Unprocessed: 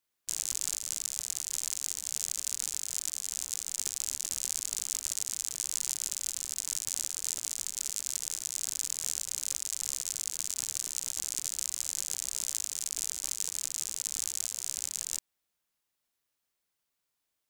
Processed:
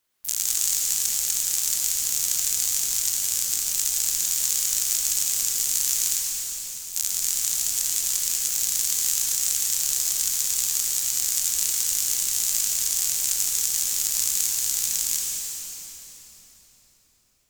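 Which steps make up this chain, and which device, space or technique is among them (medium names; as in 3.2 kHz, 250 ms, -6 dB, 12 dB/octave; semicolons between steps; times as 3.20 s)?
6.19–6.96 s: amplifier tone stack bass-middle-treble 6-0-2; shimmer-style reverb (harmony voices +12 st -5 dB; reverberation RT60 4.5 s, pre-delay 72 ms, DRR -1.5 dB); trim +7 dB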